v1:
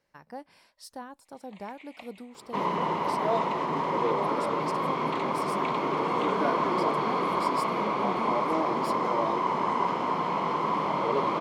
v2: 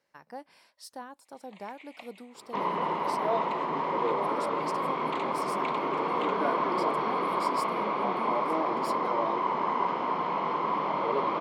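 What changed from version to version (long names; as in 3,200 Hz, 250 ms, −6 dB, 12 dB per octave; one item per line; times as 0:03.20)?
second sound: add high-frequency loss of the air 150 metres
master: add high-pass filter 280 Hz 6 dB per octave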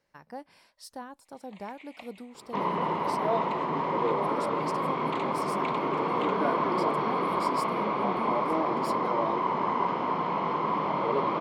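master: remove high-pass filter 280 Hz 6 dB per octave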